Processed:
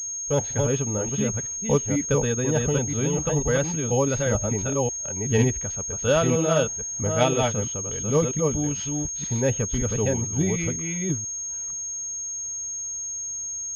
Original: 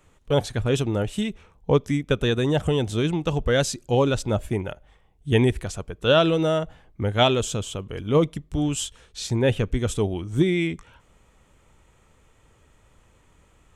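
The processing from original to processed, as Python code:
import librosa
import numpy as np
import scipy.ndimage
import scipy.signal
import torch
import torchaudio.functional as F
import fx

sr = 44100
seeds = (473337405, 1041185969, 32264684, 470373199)

y = fx.reverse_delay(x, sr, ms=489, wet_db=-2.5)
y = fx.notch_comb(y, sr, f0_hz=350.0)
y = fx.pwm(y, sr, carrier_hz=6500.0)
y = y * librosa.db_to_amplitude(-2.0)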